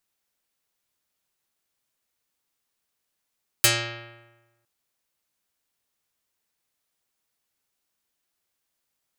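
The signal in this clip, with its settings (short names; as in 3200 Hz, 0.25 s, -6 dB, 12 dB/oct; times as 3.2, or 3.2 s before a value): plucked string A#2, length 1.01 s, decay 1.18 s, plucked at 0.47, dark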